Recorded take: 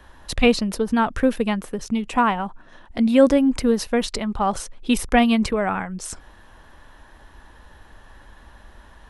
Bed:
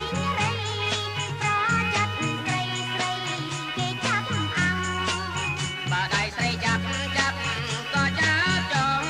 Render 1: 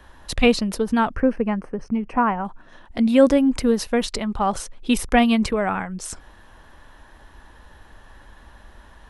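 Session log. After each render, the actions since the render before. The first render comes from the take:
0:01.15–0:02.45: moving average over 12 samples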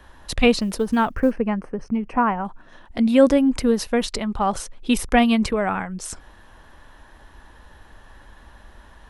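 0:00.59–0:01.32: log-companded quantiser 8 bits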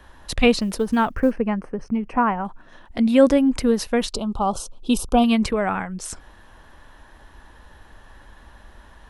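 0:04.12–0:05.24: Butterworth band-reject 1,900 Hz, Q 1.1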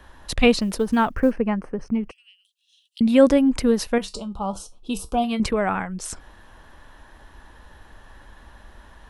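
0:02.11–0:03.01: Chebyshev high-pass filter 2,800 Hz, order 6
0:03.98–0:05.40: tuned comb filter 65 Hz, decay 0.19 s, harmonics odd, mix 70%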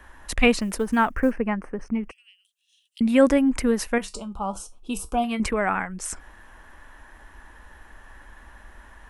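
octave-band graphic EQ 125/500/2,000/4,000/8,000 Hz −9/−3/+5/−8/+3 dB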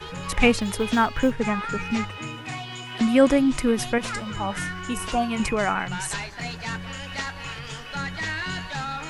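mix in bed −7.5 dB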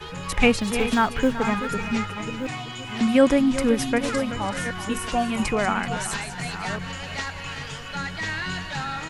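delay that plays each chunk backwards 617 ms, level −10 dB
single-tap delay 381 ms −12.5 dB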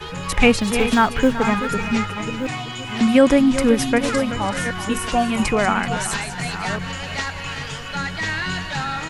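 level +4.5 dB
brickwall limiter −3 dBFS, peak gain reduction 2 dB

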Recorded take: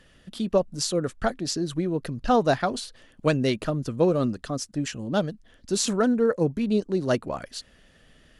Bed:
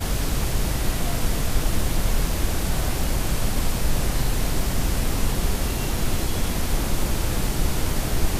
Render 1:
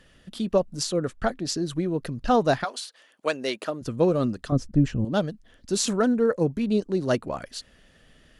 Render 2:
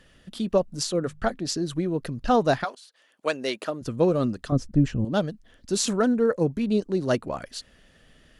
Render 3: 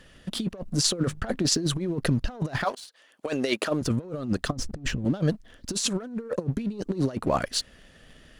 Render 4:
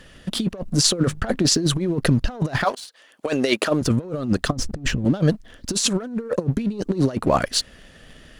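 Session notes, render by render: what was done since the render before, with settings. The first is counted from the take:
0:00.83–0:01.49: high-shelf EQ 5,600 Hz −5 dB; 0:02.63–0:03.81: high-pass filter 900 Hz → 330 Hz; 0:04.52–0:05.05: spectral tilt −4 dB per octave
0:00.89–0:01.35: mains-hum notches 50/100/150/200 Hz; 0:02.75–0:03.30: fade in, from −20.5 dB
leveller curve on the samples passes 1; compressor whose output falls as the input rises −26 dBFS, ratio −0.5
level +6 dB; brickwall limiter −3 dBFS, peak gain reduction 2.5 dB

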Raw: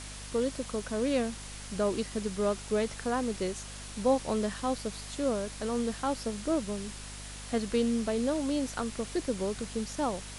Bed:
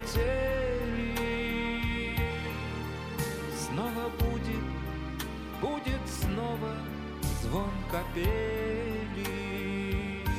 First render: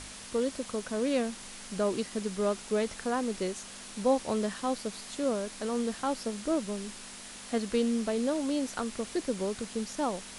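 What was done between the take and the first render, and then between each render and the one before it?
hum removal 50 Hz, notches 3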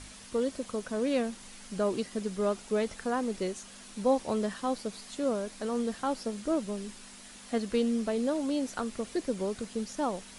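broadband denoise 6 dB, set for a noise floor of −46 dBFS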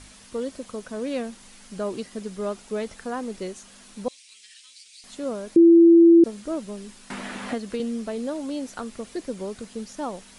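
0:04.08–0:05.04: elliptic band-pass filter 2,300–9,200 Hz, stop band 50 dB
0:05.56–0:06.24: beep over 336 Hz −9 dBFS
0:07.10–0:07.80: multiband upward and downward compressor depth 100%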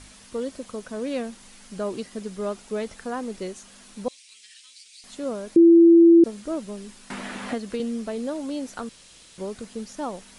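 0:08.89–0:09.38: fill with room tone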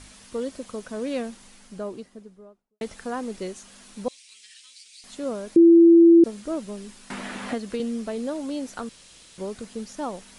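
0:01.20–0:02.81: fade out and dull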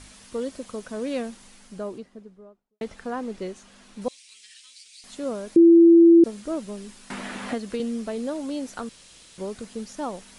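0:01.98–0:04.02: low-pass filter 3,300 Hz 6 dB per octave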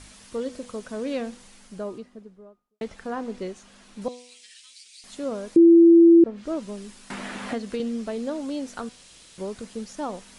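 treble cut that deepens with the level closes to 1,700 Hz, closed at −15 dBFS
hum removal 246.1 Hz, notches 17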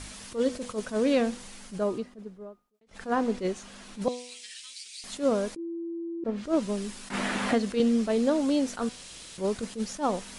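compressor whose output falls as the input rises −26 dBFS, ratio −1
level that may rise only so fast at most 240 dB per second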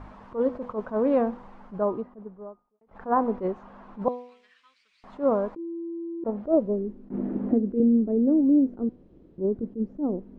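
low-pass filter sweep 990 Hz → 340 Hz, 0:06.21–0:06.97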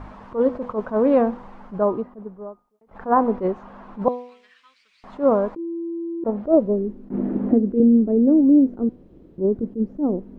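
level +5.5 dB

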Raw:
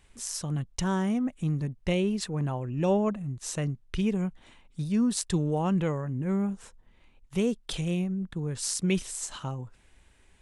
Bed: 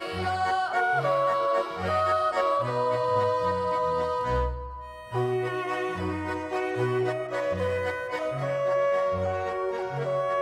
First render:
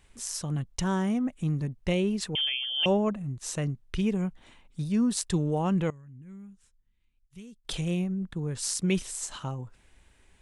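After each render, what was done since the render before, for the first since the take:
0:02.35–0:02.86: voice inversion scrambler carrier 3,300 Hz
0:05.90–0:07.65: guitar amp tone stack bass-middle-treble 6-0-2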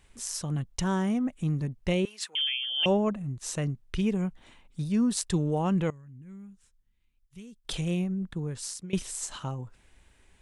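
0:02.05–0:02.65: high-pass filter 1,300 Hz
0:08.37–0:08.93: fade out, to −20.5 dB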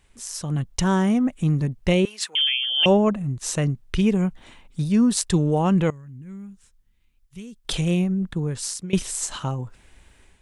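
automatic gain control gain up to 7.5 dB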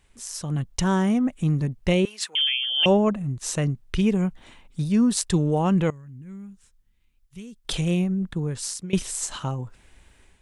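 level −1.5 dB

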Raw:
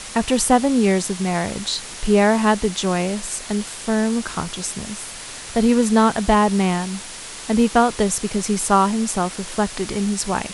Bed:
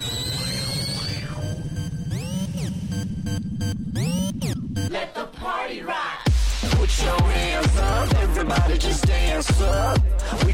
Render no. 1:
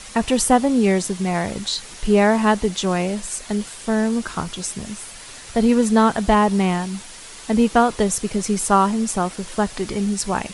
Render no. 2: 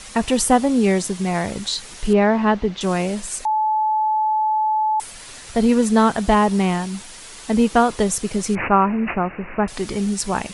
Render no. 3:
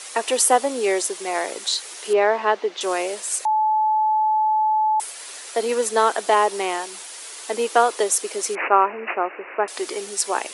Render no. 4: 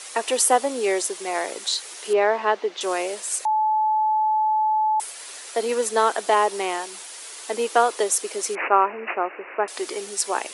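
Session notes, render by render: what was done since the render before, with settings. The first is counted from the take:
broadband denoise 6 dB, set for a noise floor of −35 dBFS
0:02.13–0:02.81: high-frequency loss of the air 220 metres; 0:03.45–0:05.00: beep over 864 Hz −16 dBFS; 0:08.55–0:09.68: bad sample-rate conversion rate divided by 8×, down none, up filtered
Butterworth high-pass 340 Hz 36 dB per octave; high-shelf EQ 9,500 Hz +8 dB
level −1.5 dB

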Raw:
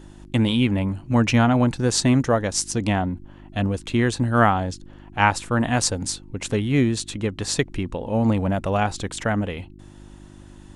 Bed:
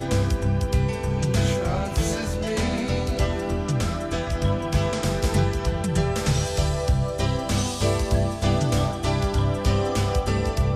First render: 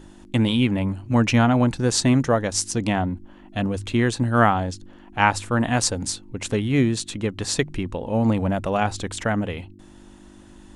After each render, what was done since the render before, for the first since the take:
hum removal 50 Hz, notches 3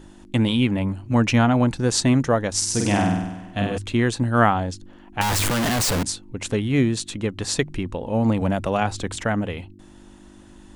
0:02.57–0:03.78: flutter between parallel walls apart 8.4 metres, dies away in 1 s
0:05.21–0:06.03: sign of each sample alone
0:08.41–0:09.16: multiband upward and downward compressor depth 40%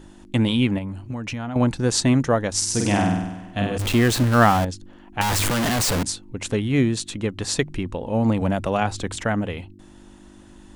0:00.78–0:01.56: downward compressor 16 to 1, threshold −25 dBFS
0:03.79–0:04.65: converter with a step at zero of −21 dBFS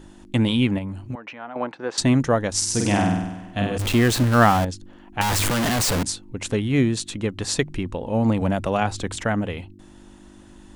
0:01.15–0:01.98: band-pass filter 500–2,100 Hz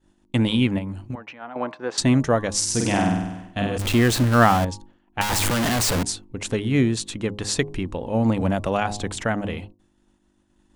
hum removal 103.6 Hz, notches 11
downward expander −34 dBFS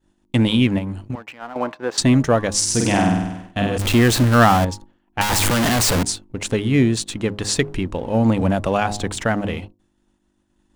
leveller curve on the samples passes 1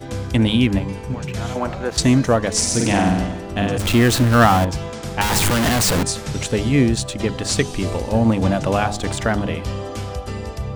mix in bed −5 dB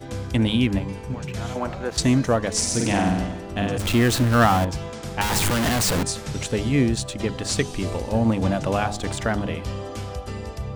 level −4 dB

